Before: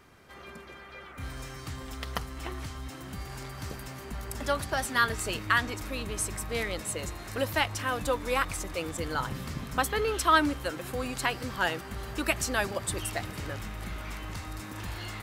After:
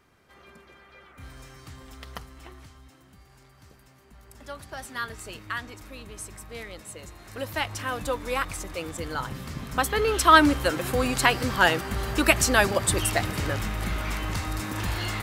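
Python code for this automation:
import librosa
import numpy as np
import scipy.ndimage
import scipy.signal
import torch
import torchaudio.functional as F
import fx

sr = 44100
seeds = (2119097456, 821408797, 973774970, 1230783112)

y = fx.gain(x, sr, db=fx.line((2.16, -5.5), (3.19, -15.0), (4.07, -15.0), (4.85, -7.5), (7.08, -7.5), (7.74, 0.0), (9.46, 0.0), (10.54, 8.5)))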